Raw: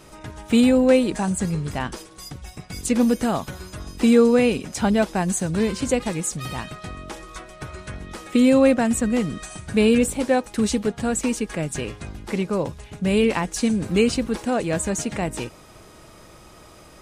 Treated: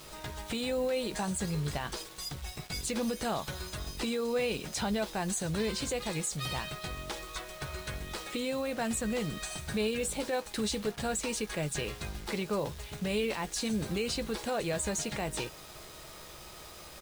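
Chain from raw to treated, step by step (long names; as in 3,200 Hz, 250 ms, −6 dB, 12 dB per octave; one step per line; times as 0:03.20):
graphic EQ with 15 bands 100 Hz −5 dB, 250 Hz −8 dB, 4,000 Hz +7 dB
in parallel at −2.5 dB: downward compressor, threshold −31 dBFS, peak gain reduction 16.5 dB
on the sum: brickwall limiter −16.5 dBFS, peak gain reduction 10 dB
bit reduction 7 bits
double-tracking delay 14 ms −11.5 dB
level −7.5 dB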